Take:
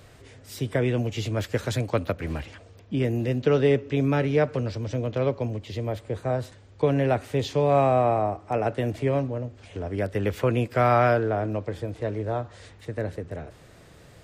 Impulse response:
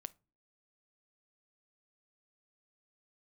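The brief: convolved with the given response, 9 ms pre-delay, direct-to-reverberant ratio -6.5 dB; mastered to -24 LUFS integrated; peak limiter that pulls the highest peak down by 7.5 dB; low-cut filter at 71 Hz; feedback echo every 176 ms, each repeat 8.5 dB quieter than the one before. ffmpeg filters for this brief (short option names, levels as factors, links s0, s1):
-filter_complex "[0:a]highpass=71,alimiter=limit=0.158:level=0:latency=1,aecho=1:1:176|352|528|704:0.376|0.143|0.0543|0.0206,asplit=2[s0][s1];[1:a]atrim=start_sample=2205,adelay=9[s2];[s1][s2]afir=irnorm=-1:irlink=0,volume=3.55[s3];[s0][s3]amix=inputs=2:normalize=0,volume=0.596"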